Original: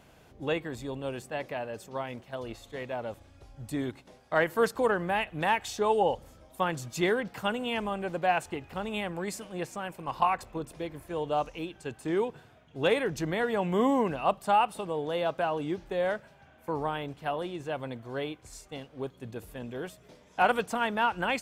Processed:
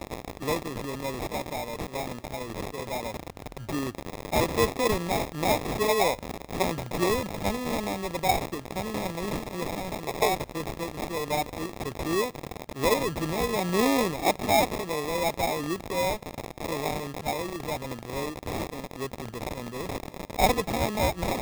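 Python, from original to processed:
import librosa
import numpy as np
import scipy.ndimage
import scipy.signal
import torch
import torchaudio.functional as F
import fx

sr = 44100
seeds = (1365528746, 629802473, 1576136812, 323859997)

y = x + 0.5 * 10.0 ** (-27.5 / 20.0) * np.diff(np.sign(x), prepend=np.sign(x[:1]))
y = fx.sample_hold(y, sr, seeds[0], rate_hz=1500.0, jitter_pct=0)
y = F.gain(torch.from_numpy(y), 1.5).numpy()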